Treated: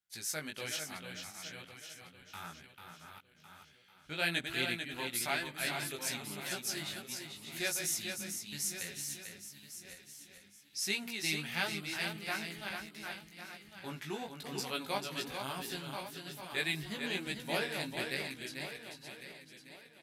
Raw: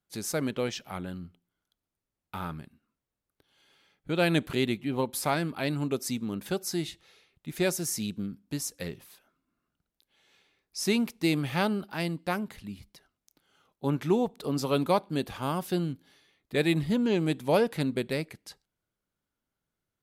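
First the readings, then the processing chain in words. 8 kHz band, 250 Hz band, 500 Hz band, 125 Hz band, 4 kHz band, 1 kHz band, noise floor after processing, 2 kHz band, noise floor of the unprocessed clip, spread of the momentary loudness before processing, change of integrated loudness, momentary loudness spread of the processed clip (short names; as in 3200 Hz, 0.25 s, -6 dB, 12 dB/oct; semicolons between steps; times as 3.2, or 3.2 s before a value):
0.0 dB, -15.0 dB, -13.0 dB, -14.0 dB, 0.0 dB, -8.0 dB, -62 dBFS, 0.0 dB, under -85 dBFS, 15 LU, -7.5 dB, 16 LU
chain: regenerating reverse delay 0.552 s, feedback 53%, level -7 dB; band shelf 760 Hz -11.5 dB; chorus 1.1 Hz, delay 15 ms, depth 4.8 ms; resonant low shelf 460 Hz -12.5 dB, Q 1.5; echo 0.443 s -6.5 dB; gain +1 dB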